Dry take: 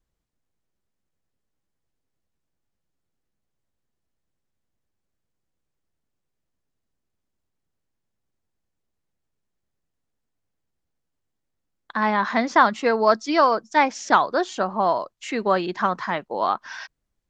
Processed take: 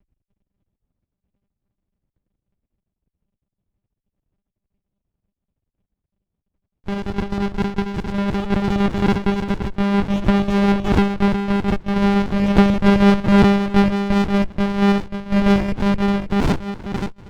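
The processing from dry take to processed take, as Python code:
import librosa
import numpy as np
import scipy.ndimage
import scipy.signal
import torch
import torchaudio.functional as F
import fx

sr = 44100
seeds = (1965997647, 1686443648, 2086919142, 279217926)

p1 = fx.cvsd(x, sr, bps=16000)
p2 = fx.tilt_shelf(p1, sr, db=8.5, hz=770.0)
p3 = fx.hpss(p2, sr, part='percussive', gain_db=-4)
p4 = fx.low_shelf(p3, sr, hz=300.0, db=8.0)
p5 = fx.rider(p4, sr, range_db=4, speed_s=2.0)
p6 = p4 + (p5 * librosa.db_to_amplitude(1.0))
p7 = fx.filter_sweep_lowpass(p6, sr, from_hz=1900.0, to_hz=700.0, start_s=15.58, end_s=17.27, q=5.9)
p8 = fx.sample_hold(p7, sr, seeds[0], rate_hz=2400.0, jitter_pct=0)
p9 = p8 + fx.echo_single(p8, sr, ms=536, db=-7.5, dry=0)
p10 = fx.echo_pitch(p9, sr, ms=299, semitones=4, count=3, db_per_echo=-3.0)
p11 = fx.lpc_monotone(p10, sr, seeds[1], pitch_hz=200.0, order=10)
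p12 = fx.running_max(p11, sr, window=65)
y = p12 * librosa.db_to_amplitude(-5.0)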